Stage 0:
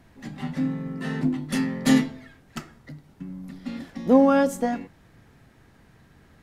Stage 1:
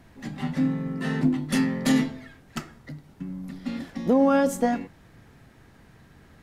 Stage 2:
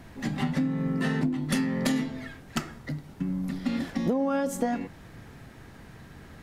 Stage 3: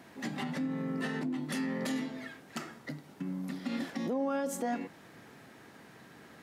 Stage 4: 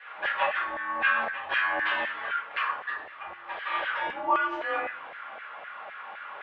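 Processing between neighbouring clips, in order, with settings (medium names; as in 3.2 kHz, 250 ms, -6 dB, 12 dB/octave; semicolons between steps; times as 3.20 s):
peak limiter -14 dBFS, peak gain reduction 8 dB; trim +2 dB
compression 8:1, threshold -29 dBFS, peak gain reduction 13.5 dB; trim +5.5 dB
peak limiter -21.5 dBFS, peak gain reduction 8 dB; high-pass 230 Hz 12 dB/octave; trim -2.5 dB
mistuned SSB -210 Hz 200–3300 Hz; simulated room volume 59 m³, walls mixed, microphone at 1.8 m; LFO high-pass saw down 3.9 Hz 650–1800 Hz; trim +4 dB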